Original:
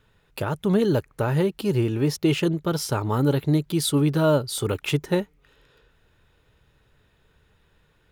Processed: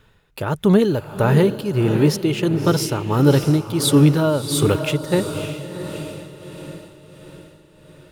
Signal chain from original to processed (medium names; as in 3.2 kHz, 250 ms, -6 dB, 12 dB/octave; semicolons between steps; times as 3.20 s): echo that smears into a reverb 619 ms, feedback 49%, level -9.5 dB; tremolo 1.5 Hz, depth 61%; trim +7.5 dB